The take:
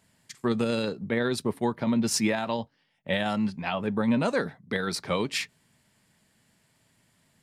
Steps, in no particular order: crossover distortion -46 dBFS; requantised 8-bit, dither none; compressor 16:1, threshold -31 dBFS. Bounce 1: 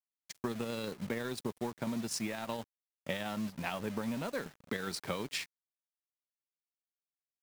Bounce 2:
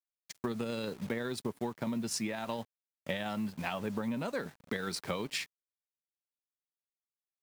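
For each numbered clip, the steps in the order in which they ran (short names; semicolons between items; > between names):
compressor > requantised > crossover distortion; requantised > crossover distortion > compressor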